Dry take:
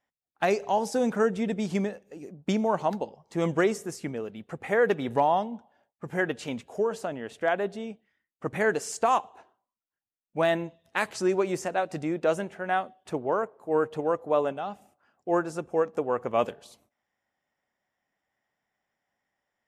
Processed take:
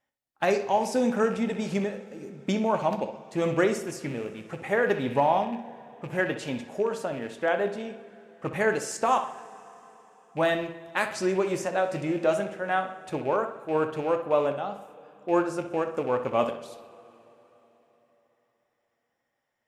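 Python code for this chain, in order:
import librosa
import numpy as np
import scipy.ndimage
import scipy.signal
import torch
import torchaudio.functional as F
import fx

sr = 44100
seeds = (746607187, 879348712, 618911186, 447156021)

y = fx.rattle_buzz(x, sr, strikes_db=-38.0, level_db=-36.0)
y = fx.echo_bbd(y, sr, ms=64, stages=2048, feedback_pct=47, wet_db=-11.0)
y = fx.rev_double_slope(y, sr, seeds[0], early_s=0.25, late_s=3.9, knee_db=-20, drr_db=8.0)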